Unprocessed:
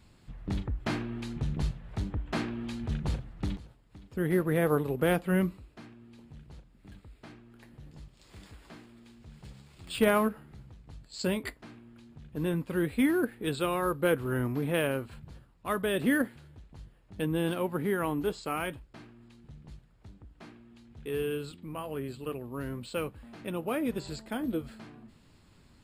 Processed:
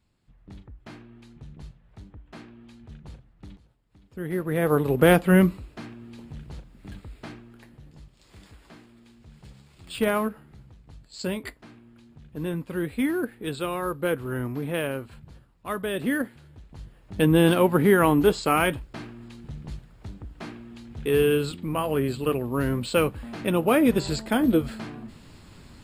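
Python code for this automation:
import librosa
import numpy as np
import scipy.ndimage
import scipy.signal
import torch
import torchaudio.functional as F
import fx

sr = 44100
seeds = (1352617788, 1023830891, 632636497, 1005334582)

y = fx.gain(x, sr, db=fx.line((3.43, -12.0), (4.41, -1.0), (4.98, 9.5), (7.27, 9.5), (7.84, 0.5), (16.32, 0.5), (17.28, 11.5)))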